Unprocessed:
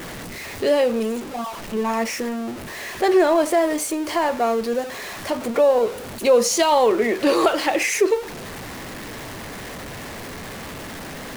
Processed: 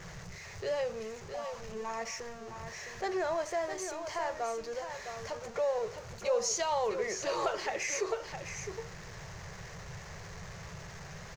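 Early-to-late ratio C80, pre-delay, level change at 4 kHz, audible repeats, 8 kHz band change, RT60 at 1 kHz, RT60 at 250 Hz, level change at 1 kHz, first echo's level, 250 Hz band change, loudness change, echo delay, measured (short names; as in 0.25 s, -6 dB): none, none, -13.5 dB, 1, -10.0 dB, none, none, -13.5 dB, -8.0 dB, -22.0 dB, -15.5 dB, 0.661 s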